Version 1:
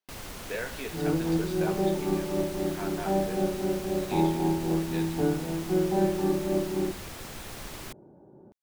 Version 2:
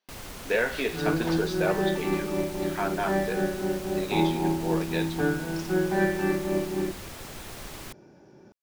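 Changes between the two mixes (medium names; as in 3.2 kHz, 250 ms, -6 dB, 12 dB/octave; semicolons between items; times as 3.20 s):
speech +9.5 dB; second sound: remove low-pass 1 kHz 24 dB/octave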